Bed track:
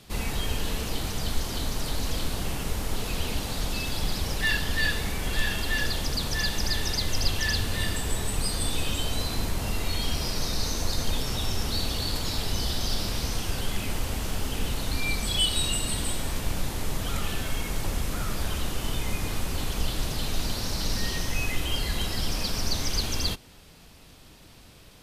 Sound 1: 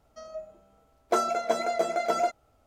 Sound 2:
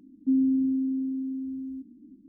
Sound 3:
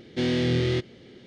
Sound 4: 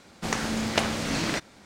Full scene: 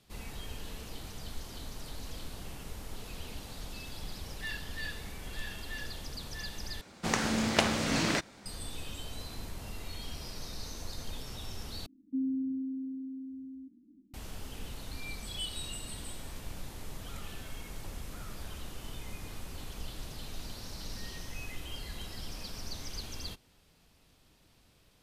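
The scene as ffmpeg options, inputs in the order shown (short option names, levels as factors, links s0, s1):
-filter_complex "[0:a]volume=0.211,asplit=3[s0][s1][s2];[s0]atrim=end=6.814[s3];[4:a]atrim=end=1.65,asetpts=PTS-STARTPTS,volume=0.841[s4];[s1]atrim=start=8.456:end=11.864[s5];[2:a]atrim=end=2.28,asetpts=PTS-STARTPTS,volume=0.335[s6];[s2]atrim=start=14.136[s7];[s3][s4]acrossfade=d=0.004:c1=hsin:c2=hsin[s8];[s8][s5]acrossfade=d=0.004:c1=hsin:c2=hsin[s9];[s9][s6]acrossfade=d=0.004:c1=hsin:c2=hsin[s10];[s10][s7]acrossfade=d=0.004:c1=hsin:c2=hsin"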